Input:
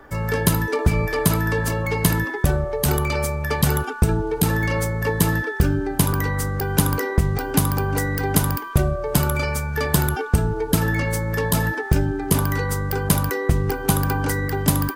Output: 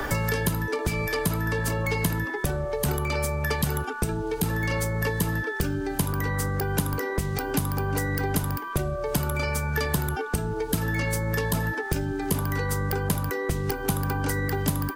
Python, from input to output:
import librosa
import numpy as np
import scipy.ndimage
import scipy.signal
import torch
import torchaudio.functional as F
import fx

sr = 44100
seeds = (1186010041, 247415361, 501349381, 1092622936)

y = fx.band_squash(x, sr, depth_pct=100)
y = y * librosa.db_to_amplitude(-6.5)